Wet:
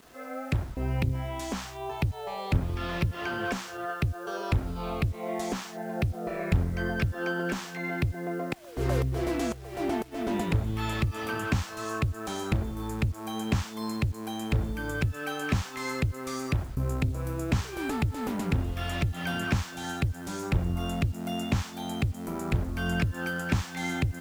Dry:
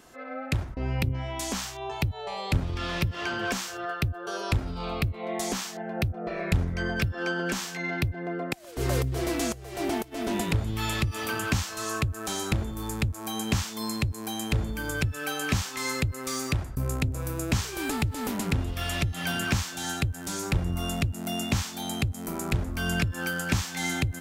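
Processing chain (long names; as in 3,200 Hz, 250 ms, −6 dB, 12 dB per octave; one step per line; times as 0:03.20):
high-shelf EQ 3,300 Hz −11 dB
bit reduction 9 bits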